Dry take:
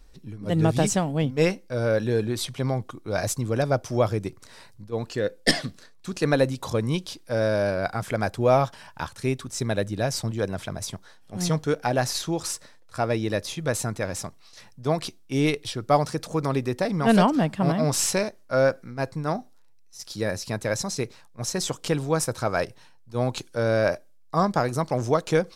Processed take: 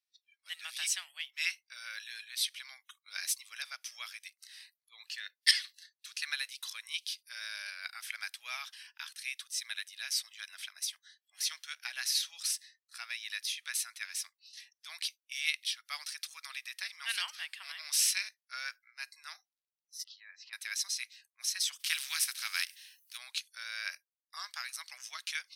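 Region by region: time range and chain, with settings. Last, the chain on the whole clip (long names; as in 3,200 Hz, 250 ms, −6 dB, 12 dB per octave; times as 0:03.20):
0:20.04–0:20.53: low-pass filter 2,300 Hz + downward compressor 3 to 1, threshold −35 dBFS
0:21.79–0:23.16: compressing power law on the bin magnitudes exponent 0.66 + notch filter 490 Hz, Q 6.7
whole clip: inverse Chebyshev high-pass filter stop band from 340 Hz, stop band 80 dB; noise reduction from a noise print of the clip's start 24 dB; parametric band 7,200 Hz −11 dB 0.24 octaves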